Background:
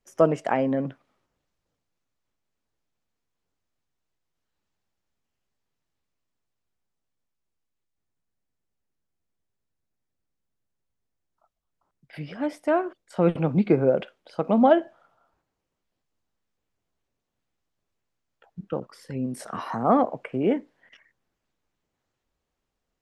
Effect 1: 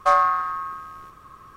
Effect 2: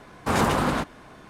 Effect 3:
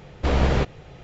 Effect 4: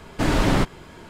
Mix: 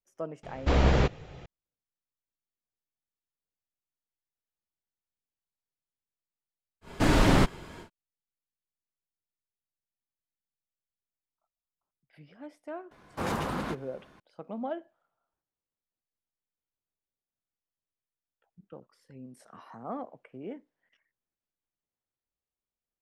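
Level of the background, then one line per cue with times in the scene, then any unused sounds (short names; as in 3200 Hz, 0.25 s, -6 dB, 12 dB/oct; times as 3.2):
background -17.5 dB
0.43 add 3 -2.5 dB
6.81 add 4 -2 dB, fades 0.10 s
12.91 add 2 -10 dB + bell 8300 Hz -3.5 dB 0.52 oct
not used: 1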